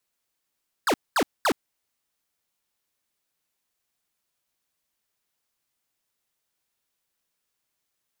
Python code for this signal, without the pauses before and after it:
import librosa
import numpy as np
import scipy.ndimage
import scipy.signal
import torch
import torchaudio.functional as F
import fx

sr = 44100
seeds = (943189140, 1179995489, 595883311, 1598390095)

y = fx.laser_zaps(sr, level_db=-21, start_hz=1800.0, end_hz=220.0, length_s=0.07, wave='square', shots=3, gap_s=0.22)